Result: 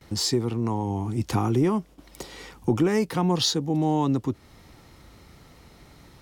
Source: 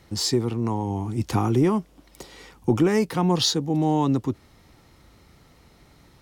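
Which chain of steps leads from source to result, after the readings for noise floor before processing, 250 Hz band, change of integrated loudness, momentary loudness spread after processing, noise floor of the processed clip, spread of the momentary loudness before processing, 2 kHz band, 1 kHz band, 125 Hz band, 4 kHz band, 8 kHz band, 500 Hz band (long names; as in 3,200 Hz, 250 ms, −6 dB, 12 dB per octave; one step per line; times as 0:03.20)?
−56 dBFS, −1.5 dB, −1.5 dB, 15 LU, −53 dBFS, 8 LU, −1.5 dB, −1.5 dB, −1.5 dB, −1.5 dB, −1.0 dB, −2.0 dB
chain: noise gate with hold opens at −46 dBFS
in parallel at +2.5 dB: downward compressor, threshold −32 dBFS, peak gain reduction 16.5 dB
on the sum: level −4 dB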